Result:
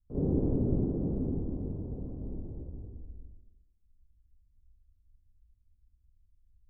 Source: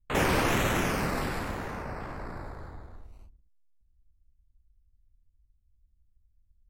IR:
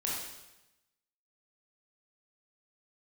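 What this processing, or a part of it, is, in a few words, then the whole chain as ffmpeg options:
next room: -filter_complex "[0:a]lowpass=frequency=400:width=0.5412,lowpass=frequency=400:width=1.3066[link_01];[1:a]atrim=start_sample=2205[link_02];[link_01][link_02]afir=irnorm=-1:irlink=0,volume=-3dB"

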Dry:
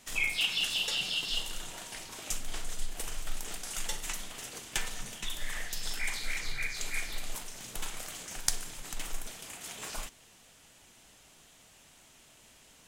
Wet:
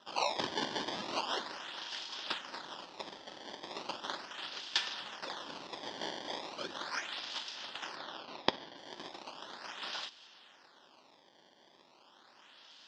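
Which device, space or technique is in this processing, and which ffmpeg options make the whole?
circuit-bent sampling toy: -filter_complex "[0:a]acrusher=samples=19:mix=1:aa=0.000001:lfo=1:lforange=30.4:lforate=0.37,highpass=460,equalizer=frequency=460:width_type=q:width=4:gain=-9,equalizer=frequency=690:width_type=q:width=4:gain=-6,equalizer=frequency=1200:width_type=q:width=4:gain=-3,equalizer=frequency=2200:width_type=q:width=4:gain=-9,equalizer=frequency=3300:width_type=q:width=4:gain=6,equalizer=frequency=5100:width_type=q:width=4:gain=6,lowpass=frequency=5300:width=0.5412,lowpass=frequency=5300:width=1.3066,asettb=1/sr,asplit=3[link_01][link_02][link_03];[link_01]atrim=end=7.964[link_04];[link_02]atrim=start=7.96:end=8.77,asetpts=PTS-STARTPTS,afade=type=in:duration=0.004:curve=qsin,afade=type=out:start_time=0.806:duration=0.004:curve=qsin,lowpass=frequency=5200:width=0.5412,lowpass=frequency=5200:width=1.3066[link_05];[link_03]atrim=start=8.766[link_06];[link_04][link_05]acrossfade=duration=0.004:curve1=hsin:curve2=qsin[link_07];[link_07][link_06]acrossfade=duration=0.004:curve1=qsin:curve2=hsin,volume=2dB"

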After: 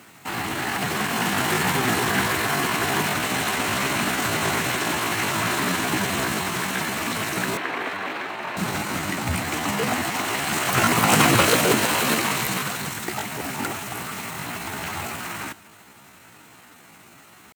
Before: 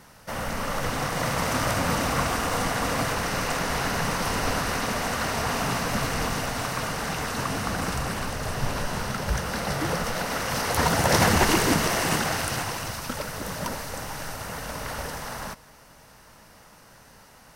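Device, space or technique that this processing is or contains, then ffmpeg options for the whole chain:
chipmunk voice: -filter_complex "[0:a]asetrate=64194,aresample=44100,atempo=0.686977,highpass=frequency=92:width=0.5412,highpass=frequency=92:width=1.3066,asettb=1/sr,asplit=3[link_01][link_02][link_03];[link_01]atrim=end=7.574[link_04];[link_02]atrim=start=7.57:end=8.57,asetpts=PTS-STARTPTS,afade=type=in:duration=0.004:curve=qsin,afade=type=out:start_time=0.996:duration=0.004:curve=qsin,acrossover=split=310 3700:gain=0.0794 1 0.1[link_05][link_06][link_07];[link_05][link_06][link_07]amix=inputs=3:normalize=0[link_08];[link_03]atrim=start=8.566[link_09];[link_04][link_08]acrossfade=duration=0.004:curve1=hsin:curve2=qsin[link_10];[link_10][link_09]acrossfade=duration=0.004:curve1=qsin:curve2=hsin,volume=3.5dB"

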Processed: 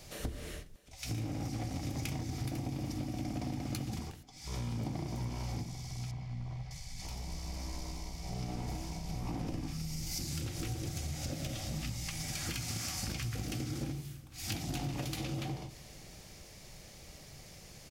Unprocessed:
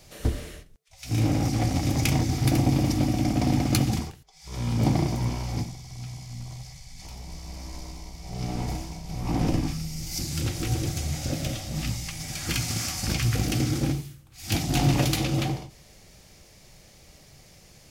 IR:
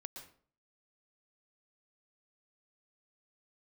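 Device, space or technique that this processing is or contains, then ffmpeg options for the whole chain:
serial compression, peaks first: -filter_complex "[0:a]acompressor=threshold=-31dB:ratio=6,acompressor=threshold=-40dB:ratio=1.5,asettb=1/sr,asplit=3[link_01][link_02][link_03];[link_01]atrim=end=6.114[link_04];[link_02]atrim=start=6.11:end=6.71,asetpts=PTS-STARTPTS,afade=type=in:duration=0.004:curve=qsin,afade=type=out:start_time=0.596:duration=0.004:curve=qsin,lowpass=2300[link_05];[link_03]atrim=start=6.706[link_06];[link_04][link_05]acrossfade=duration=0.004:curve1=hsin:curve2=qsin[link_07];[link_07][link_06]acrossfade=duration=0.004:curve1=qsin:curve2=hsin,aecho=1:1:634:0.0708"

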